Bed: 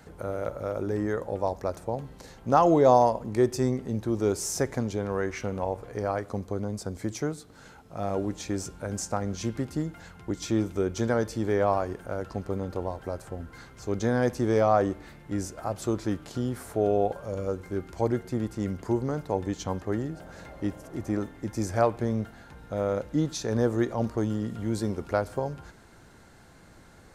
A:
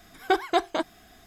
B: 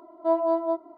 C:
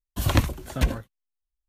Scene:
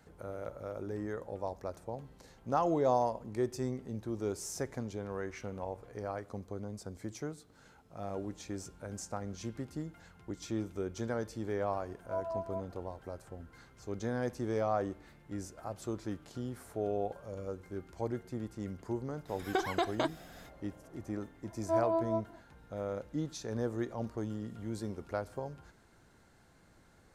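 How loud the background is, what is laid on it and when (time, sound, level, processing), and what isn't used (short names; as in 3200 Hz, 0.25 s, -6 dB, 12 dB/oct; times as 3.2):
bed -10 dB
11.85 add B -4 dB + vocal tract filter a
19.25 add A -1 dB, fades 0.05 s + compressor, threshold -24 dBFS
21.44 add B -7.5 dB
not used: C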